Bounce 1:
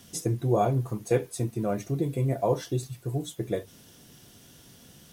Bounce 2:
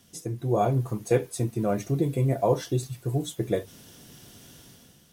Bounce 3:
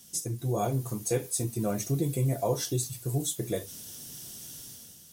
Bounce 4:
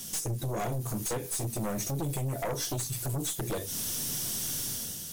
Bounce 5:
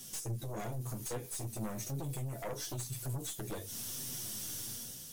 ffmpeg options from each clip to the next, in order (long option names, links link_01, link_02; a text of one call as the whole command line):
ffmpeg -i in.wav -af "dynaudnorm=framelen=110:gausssize=9:maxgain=10dB,volume=-6.5dB" out.wav
ffmpeg -i in.wav -filter_complex "[0:a]bass=frequency=250:gain=2,treble=frequency=4000:gain=15,asplit=2[link_01][link_02];[link_02]alimiter=limit=-17dB:level=0:latency=1:release=100,volume=2.5dB[link_03];[link_01][link_03]amix=inputs=2:normalize=0,flanger=delay=5.1:depth=9.7:regen=-58:speed=0.46:shape=triangular,volume=-7dB" out.wav
ffmpeg -i in.wav -af "acompressor=threshold=-38dB:ratio=6,aeval=exprs='0.0376*(cos(1*acos(clip(val(0)/0.0376,-1,1)))-cos(1*PI/2))+0.0168*(cos(4*acos(clip(val(0)/0.0376,-1,1)))-cos(4*PI/2))+0.00668*(cos(5*acos(clip(val(0)/0.0376,-1,1)))-cos(5*PI/2))+0.0075*(cos(6*acos(clip(val(0)/0.0376,-1,1)))-cos(6*PI/2))+0.00211*(cos(8*acos(clip(val(0)/0.0376,-1,1)))-cos(8*PI/2))':channel_layout=same,aeval=exprs='0.0562*sin(PI/2*1.78*val(0)/0.0562)':channel_layout=same,volume=-1.5dB" out.wav
ffmpeg -i in.wav -af "flanger=delay=7.5:depth=2.3:regen=44:speed=1:shape=triangular,volume=-4dB" out.wav